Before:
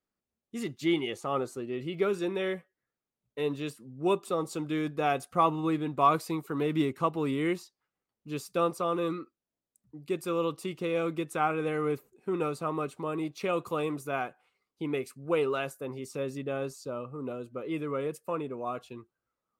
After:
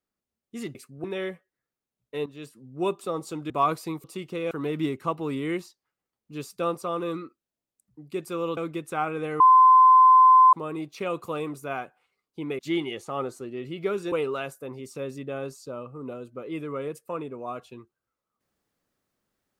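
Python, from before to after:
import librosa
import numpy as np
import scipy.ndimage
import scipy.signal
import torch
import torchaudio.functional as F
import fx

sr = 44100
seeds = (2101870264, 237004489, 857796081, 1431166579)

y = fx.edit(x, sr, fx.swap(start_s=0.75, length_s=1.53, other_s=15.02, other_length_s=0.29),
    fx.fade_in_from(start_s=3.5, length_s=0.53, curve='qsin', floor_db=-14.5),
    fx.cut(start_s=4.74, length_s=1.19),
    fx.move(start_s=10.53, length_s=0.47, to_s=6.47),
    fx.bleep(start_s=11.83, length_s=1.13, hz=1030.0, db=-11.0), tone=tone)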